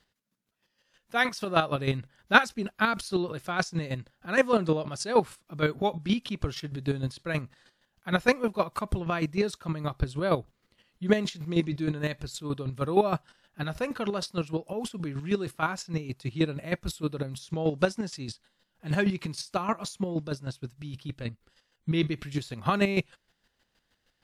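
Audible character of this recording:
chopped level 6.4 Hz, depth 60%, duty 25%
WMA

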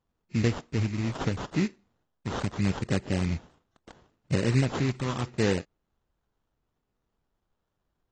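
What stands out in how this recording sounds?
phaser sweep stages 2, 0.75 Hz, lowest notch 500–1,700 Hz
aliases and images of a low sample rate 2,300 Hz, jitter 20%
AAC

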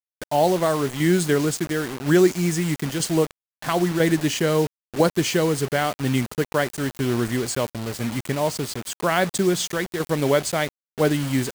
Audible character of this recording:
tremolo saw down 1 Hz, depth 50%
a quantiser's noise floor 6 bits, dither none

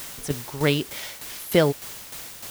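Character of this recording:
a quantiser's noise floor 6 bits, dither triangular
tremolo saw down 3.3 Hz, depth 60%

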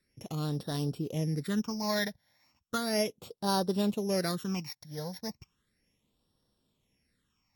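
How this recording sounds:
a buzz of ramps at a fixed pitch in blocks of 8 samples
phaser sweep stages 8, 0.35 Hz, lowest notch 350–2,200 Hz
AAC

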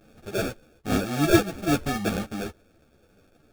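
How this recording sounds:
sample-and-hold tremolo 2.4 Hz, depth 70%
aliases and images of a low sample rate 1,000 Hz, jitter 0%
a shimmering, thickened sound

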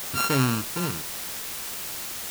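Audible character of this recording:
a buzz of ramps at a fixed pitch in blocks of 32 samples
sample-and-hold tremolo
a quantiser's noise floor 6 bits, dither triangular

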